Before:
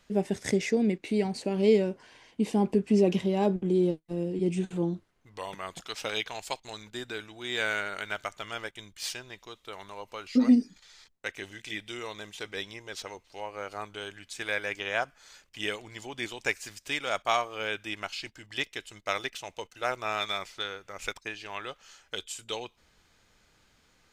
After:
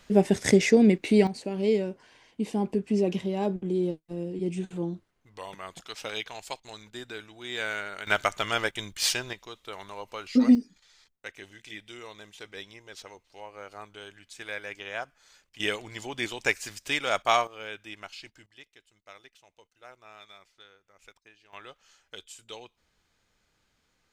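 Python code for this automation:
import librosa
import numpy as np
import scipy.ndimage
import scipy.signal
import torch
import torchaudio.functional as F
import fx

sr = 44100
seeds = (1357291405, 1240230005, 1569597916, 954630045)

y = fx.gain(x, sr, db=fx.steps((0.0, 7.0), (1.27, -2.5), (8.07, 9.5), (9.33, 2.0), (10.55, -5.5), (15.6, 3.5), (17.47, -6.5), (18.46, -19.0), (21.53, -7.5)))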